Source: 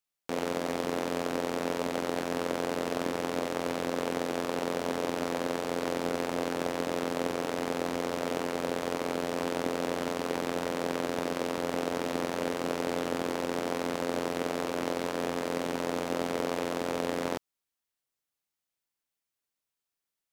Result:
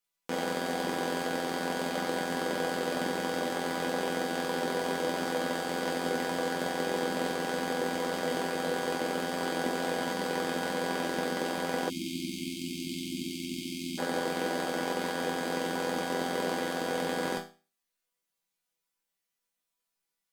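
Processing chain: chord resonator E3 minor, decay 0.34 s; spectral selection erased 11.89–13.98 s, 380–2100 Hz; sine folder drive 15 dB, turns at -12.5 dBFS

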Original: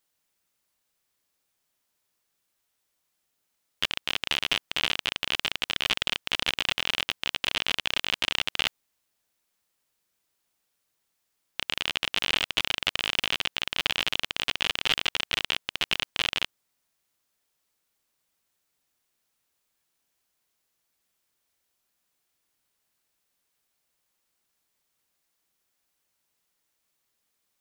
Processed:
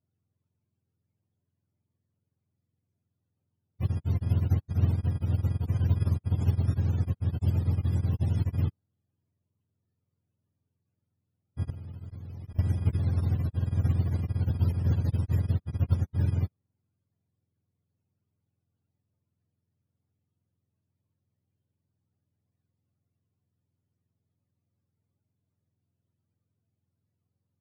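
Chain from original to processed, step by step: spectrum inverted on a logarithmic axis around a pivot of 460 Hz; 11.70–12.59 s: level held to a coarse grid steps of 21 dB; trim +2 dB

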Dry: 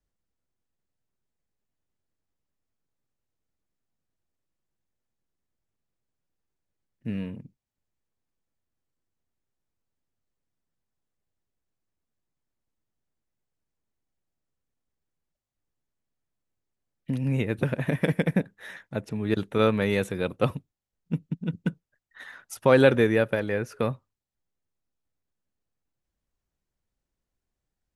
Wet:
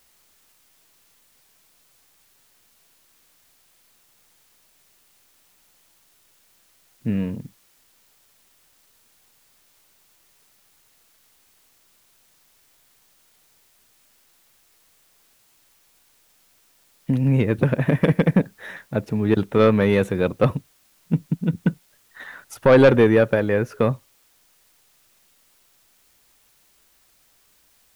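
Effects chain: treble shelf 2.6 kHz -9.5 dB; in parallel at -9 dB: sine folder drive 9 dB, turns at -5 dBFS; on the sum: word length cut 10-bit, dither triangular

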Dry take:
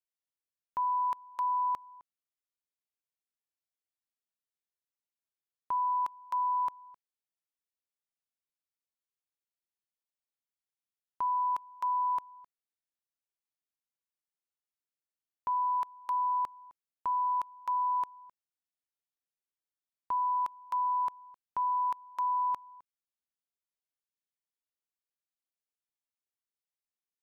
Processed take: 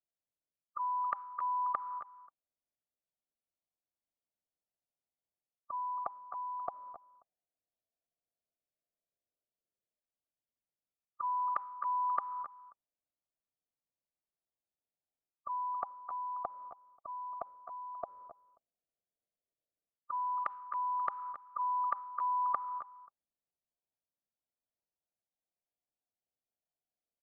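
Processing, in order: level-controlled noise filter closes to 310 Hz, open at -31.5 dBFS; peaking EQ 580 Hz +11.5 dB 0.64 oct; band-stop 810 Hz, Q 24; reverse; compression 10:1, threshold -41 dBFS, peak gain reduction 14 dB; reverse; LFO low-pass saw down 0.1 Hz 460–1600 Hz; formant shift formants +3 st; on a send: delay 274 ms -14.5 dB; on the sum: trim +3.5 dB

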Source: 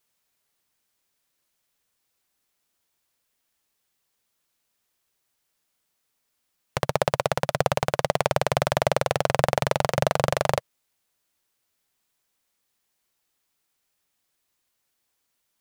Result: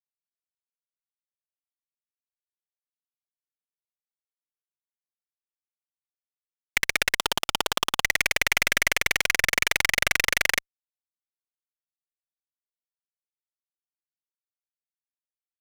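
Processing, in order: resonant high-pass 2.1 kHz, resonance Q 3.3; 7.17–8.02 s: ring modulator 1.1 kHz; fuzz box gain 30 dB, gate -37 dBFS; trim +1 dB

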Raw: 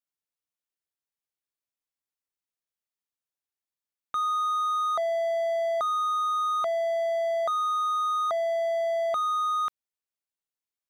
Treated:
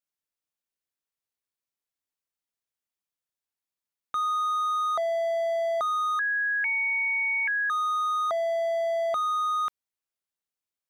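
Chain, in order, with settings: 6.19–7.70 s: frequency inversion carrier 2.9 kHz

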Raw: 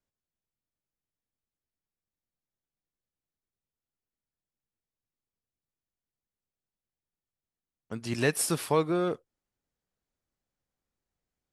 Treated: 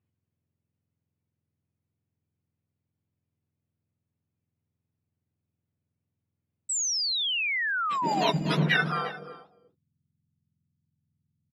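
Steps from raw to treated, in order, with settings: spectrum inverted on a logarithmic axis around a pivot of 1.3 kHz; waveshaping leveller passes 1; compressor with a negative ratio -25 dBFS, ratio -1; treble shelf 9.5 kHz +11.5 dB; on a send: delay 246 ms -8.5 dB; on the sum: low-pass sweep 2.5 kHz -> 170 Hz, 8.67–9.65 s; delay 351 ms -17.5 dB; painted sound fall, 6.69–8.30 s, 640–8100 Hz -28 dBFS

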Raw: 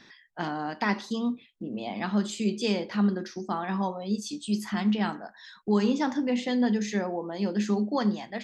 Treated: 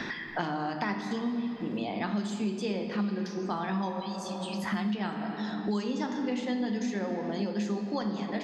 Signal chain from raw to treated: 4.00–4.64 s: high-pass 1.3 kHz; on a send at -4.5 dB: reverberation RT60 2.5 s, pre-delay 6 ms; on the sum: three bands compressed up and down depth 100%; trim -6 dB

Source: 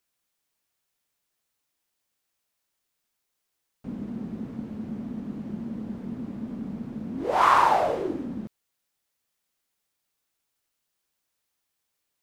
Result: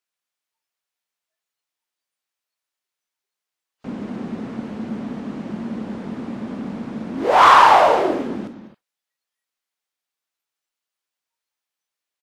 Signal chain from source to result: overdrive pedal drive 15 dB, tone 5.2 kHz, clips at -6 dBFS; multi-tap echo 114/199/246/272 ms -14/-13.5/-15.5/-16.5 dB; spectral noise reduction 17 dB; trim +4 dB

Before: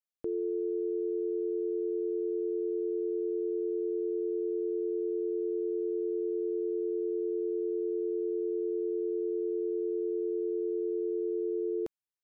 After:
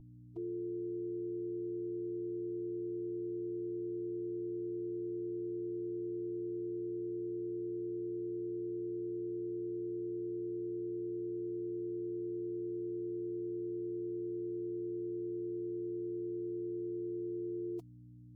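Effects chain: time stretch by phase-locked vocoder 1.5×; hum 60 Hz, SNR 12 dB; static phaser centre 320 Hz, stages 8; trim -4 dB

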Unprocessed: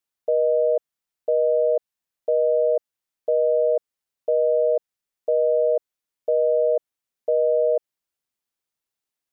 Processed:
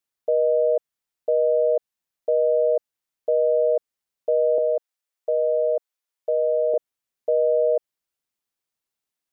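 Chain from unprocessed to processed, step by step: 4.58–6.74 s: high-pass 450 Hz 12 dB/octave

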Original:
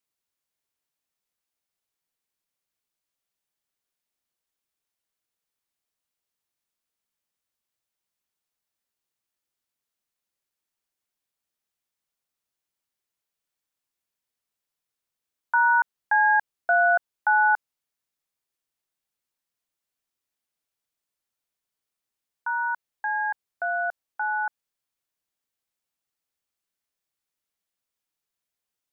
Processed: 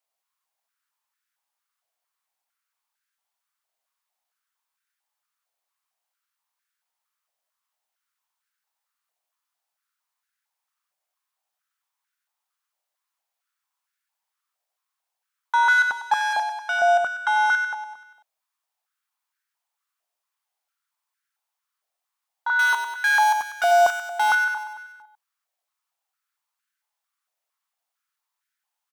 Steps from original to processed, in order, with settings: 15.68–16.33 s: comb 3.5 ms, depth 69%; saturation -24.5 dBFS, distortion -7 dB; 22.59–24.35 s: waveshaping leveller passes 5; feedback delay 96 ms, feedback 57%, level -6.5 dB; step-sequenced high-pass 4.4 Hz 680–1500 Hz

